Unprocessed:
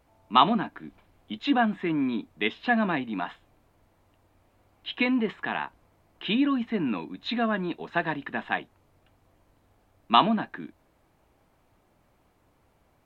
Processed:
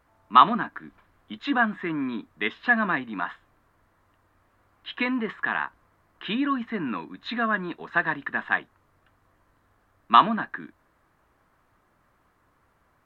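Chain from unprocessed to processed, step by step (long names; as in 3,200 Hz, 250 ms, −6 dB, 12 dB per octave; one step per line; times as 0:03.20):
flat-topped bell 1,400 Hz +9 dB 1.1 octaves
level −2.5 dB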